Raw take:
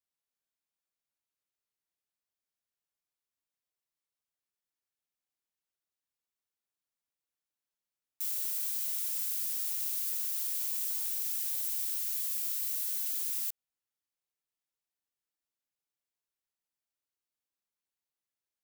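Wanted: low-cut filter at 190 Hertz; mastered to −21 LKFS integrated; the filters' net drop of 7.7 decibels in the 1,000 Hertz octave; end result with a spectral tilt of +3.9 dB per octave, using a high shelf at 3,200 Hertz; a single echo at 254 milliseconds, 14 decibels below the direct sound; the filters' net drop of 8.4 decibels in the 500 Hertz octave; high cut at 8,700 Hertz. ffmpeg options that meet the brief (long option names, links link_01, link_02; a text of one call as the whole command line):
ffmpeg -i in.wav -af "highpass=190,lowpass=8700,equalizer=frequency=500:width_type=o:gain=-8,equalizer=frequency=1000:width_type=o:gain=-7.5,highshelf=frequency=3200:gain=-7,aecho=1:1:254:0.2,volume=26dB" out.wav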